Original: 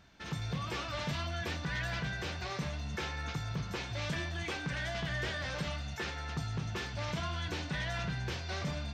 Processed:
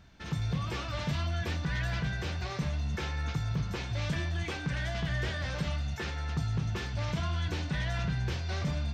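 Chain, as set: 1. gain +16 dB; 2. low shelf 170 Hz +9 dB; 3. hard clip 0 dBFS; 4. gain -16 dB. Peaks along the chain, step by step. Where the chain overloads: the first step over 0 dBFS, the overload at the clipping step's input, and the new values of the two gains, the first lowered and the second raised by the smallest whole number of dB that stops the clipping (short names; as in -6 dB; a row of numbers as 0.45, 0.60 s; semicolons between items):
-10.5, -5.5, -5.5, -21.5 dBFS; no overload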